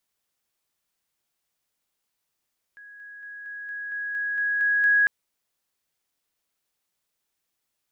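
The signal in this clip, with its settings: level ladder 1.66 kHz -43 dBFS, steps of 3 dB, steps 10, 0.23 s 0.00 s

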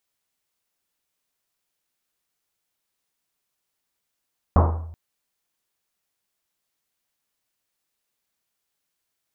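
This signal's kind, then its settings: Risset drum length 0.38 s, pitch 82 Hz, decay 0.91 s, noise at 640 Hz, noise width 950 Hz, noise 35%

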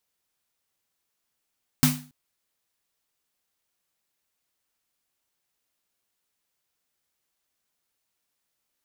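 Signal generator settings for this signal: snare drum length 0.28 s, tones 150 Hz, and 250 Hz, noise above 660 Hz, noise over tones -2 dB, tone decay 0.39 s, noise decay 0.34 s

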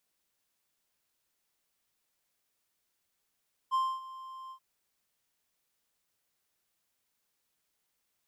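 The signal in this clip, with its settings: ADSR triangle 1.05 kHz, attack 33 ms, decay 258 ms, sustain -18 dB, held 0.80 s, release 80 ms -22.5 dBFS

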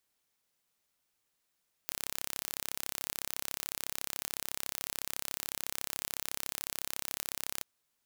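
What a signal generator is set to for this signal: pulse train 33.9 per s, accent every 0, -8.5 dBFS 5.74 s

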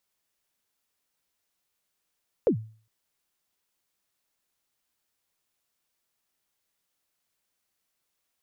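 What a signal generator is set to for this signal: kick drum length 0.41 s, from 550 Hz, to 110 Hz, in 92 ms, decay 0.42 s, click off, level -15 dB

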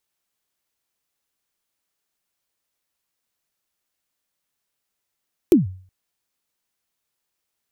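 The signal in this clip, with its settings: kick drum length 0.37 s, from 390 Hz, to 93 Hz, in 145 ms, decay 0.46 s, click on, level -6 dB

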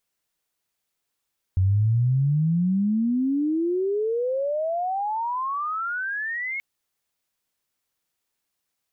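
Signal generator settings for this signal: sweep logarithmic 91 Hz -> 2.2 kHz -16.5 dBFS -> -26.5 dBFS 5.03 s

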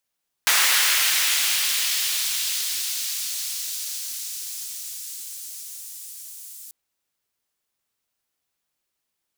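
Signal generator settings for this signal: swept filtered noise pink, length 6.24 s highpass, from 1.5 kHz, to 8.3 kHz, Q 1, linear, gain ramp -19.5 dB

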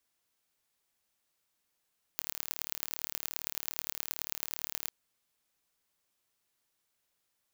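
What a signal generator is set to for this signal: pulse train 37.5 per s, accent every 4, -5.5 dBFS 2.72 s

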